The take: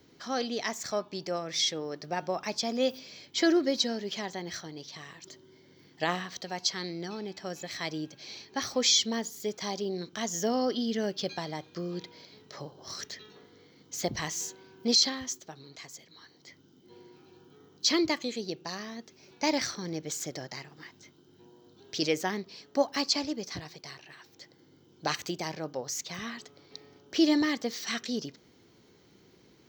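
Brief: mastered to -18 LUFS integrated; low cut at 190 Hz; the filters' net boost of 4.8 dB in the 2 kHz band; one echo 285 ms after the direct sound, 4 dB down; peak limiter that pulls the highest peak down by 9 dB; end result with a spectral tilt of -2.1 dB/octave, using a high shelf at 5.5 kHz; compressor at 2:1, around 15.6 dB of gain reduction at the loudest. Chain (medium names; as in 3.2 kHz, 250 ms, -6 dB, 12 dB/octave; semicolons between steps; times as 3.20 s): high-pass 190 Hz; peaking EQ 2 kHz +5 dB; treble shelf 5.5 kHz +3.5 dB; compression 2:1, threshold -48 dBFS; peak limiter -32 dBFS; delay 285 ms -4 dB; trim +25 dB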